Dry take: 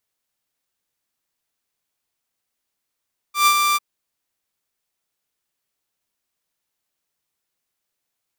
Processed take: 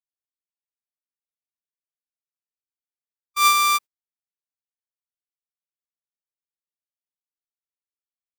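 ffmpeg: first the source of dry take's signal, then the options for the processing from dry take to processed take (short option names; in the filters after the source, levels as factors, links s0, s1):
-f lavfi -i "aevalsrc='0.376*(2*mod(1180*t,1)-1)':d=0.448:s=44100,afade=t=in:d=0.125,afade=t=out:st=0.125:d=0.068:silence=0.562,afade=t=out:st=0.42:d=0.028"
-af "agate=range=0.02:threshold=0.0316:ratio=16:detection=peak"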